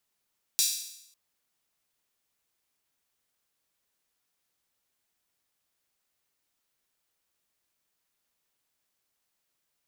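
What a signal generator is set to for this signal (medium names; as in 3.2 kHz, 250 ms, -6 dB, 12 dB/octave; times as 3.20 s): open hi-hat length 0.55 s, high-pass 4.6 kHz, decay 0.79 s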